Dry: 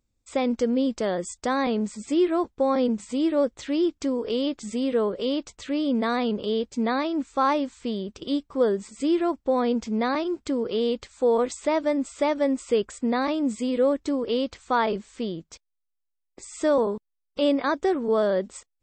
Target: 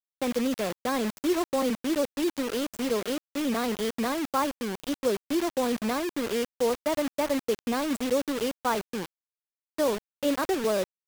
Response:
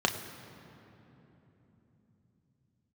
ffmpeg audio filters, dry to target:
-filter_complex "[0:a]acrossover=split=190|3400[s0][s1][s2];[s2]aeval=exprs='0.0158*(abs(mod(val(0)/0.0158+3,4)-2)-1)':c=same[s3];[s0][s1][s3]amix=inputs=3:normalize=0,atempo=1.7,acrusher=bits=4:mix=0:aa=0.000001,volume=0.668"

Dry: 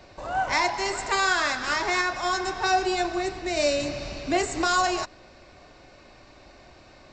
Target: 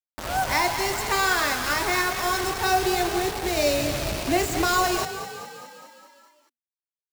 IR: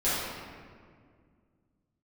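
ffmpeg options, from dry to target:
-filter_complex "[0:a]equalizer=f=78:w=0.47:g=8.5,acrusher=bits=4:mix=0:aa=0.000001,asplit=8[s0][s1][s2][s3][s4][s5][s6][s7];[s1]adelay=206,afreqshift=34,volume=0.282[s8];[s2]adelay=412,afreqshift=68,volume=0.174[s9];[s3]adelay=618,afreqshift=102,volume=0.108[s10];[s4]adelay=824,afreqshift=136,volume=0.0668[s11];[s5]adelay=1030,afreqshift=170,volume=0.0417[s12];[s6]adelay=1236,afreqshift=204,volume=0.0257[s13];[s7]adelay=1442,afreqshift=238,volume=0.016[s14];[s0][s8][s9][s10][s11][s12][s13][s14]amix=inputs=8:normalize=0"

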